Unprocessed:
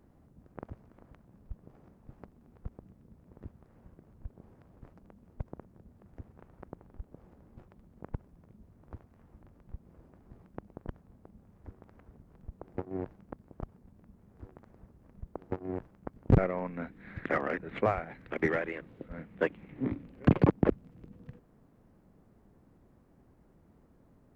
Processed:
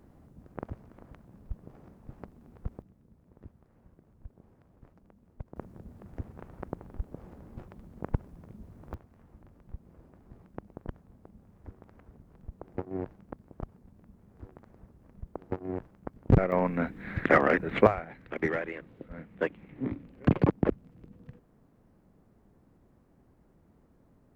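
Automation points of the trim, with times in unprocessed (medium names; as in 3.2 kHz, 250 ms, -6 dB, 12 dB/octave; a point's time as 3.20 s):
+5 dB
from 2.82 s -3.5 dB
from 5.56 s +8.5 dB
from 8.94 s +1.5 dB
from 16.52 s +9 dB
from 17.87 s -0.5 dB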